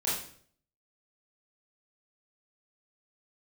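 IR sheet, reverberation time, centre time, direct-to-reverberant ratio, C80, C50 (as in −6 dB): 0.55 s, 50 ms, −8.5 dB, 7.0 dB, 2.5 dB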